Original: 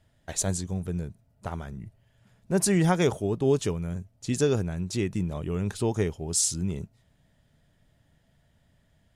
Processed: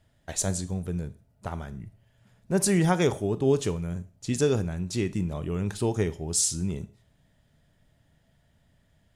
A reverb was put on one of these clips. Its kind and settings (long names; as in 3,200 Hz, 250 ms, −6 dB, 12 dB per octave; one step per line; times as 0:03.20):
four-comb reverb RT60 0.39 s, combs from 26 ms, DRR 14.5 dB